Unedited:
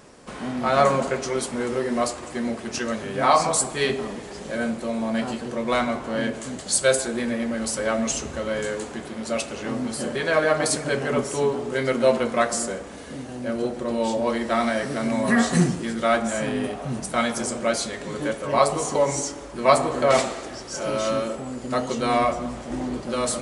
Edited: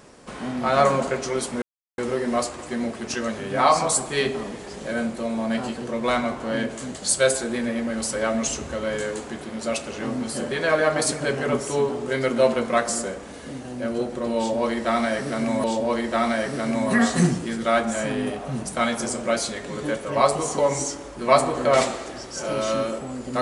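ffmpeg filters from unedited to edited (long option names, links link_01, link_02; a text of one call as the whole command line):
ffmpeg -i in.wav -filter_complex "[0:a]asplit=3[link_01][link_02][link_03];[link_01]atrim=end=1.62,asetpts=PTS-STARTPTS,afade=type=out:start_time=1.616:duration=0.004:curve=hsin,apad=pad_dur=0.36[link_04];[link_02]atrim=start=1.62:end=15.282,asetpts=PTS-STARTPTS,afade=type=in:duration=0.004:curve=hsin[link_05];[link_03]atrim=start=14.008[link_06];[link_04][link_05]concat=n=2:v=0:a=1[link_07];[link_07][link_06]acrossfade=duration=0.004:curve1=hsin:curve2=hsin" out.wav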